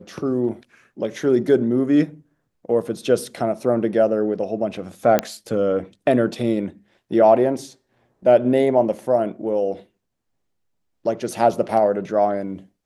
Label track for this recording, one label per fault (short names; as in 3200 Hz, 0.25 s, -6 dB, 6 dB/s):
5.190000	5.190000	pop -4 dBFS